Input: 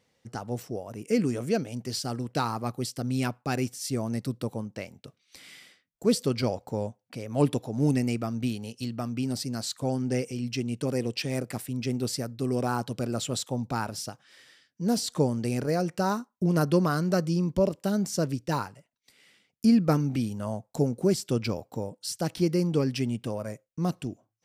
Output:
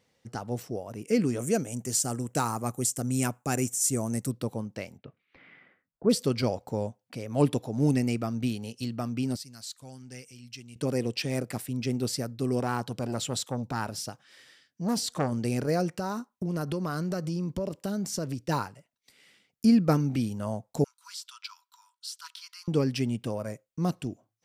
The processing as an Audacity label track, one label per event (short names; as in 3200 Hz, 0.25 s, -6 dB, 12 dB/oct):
1.390000	4.310000	resonant high shelf 5700 Hz +8 dB, Q 3
4.970000	6.090000	LPF 2900 Hz -> 1500 Hz 24 dB/oct
9.360000	10.760000	passive tone stack bass-middle-treble 5-5-5
12.600000	15.320000	core saturation saturates under 890 Hz
15.950000	18.410000	compressor, threshold -27 dBFS
20.840000	22.680000	rippled Chebyshev high-pass 950 Hz, ripple 9 dB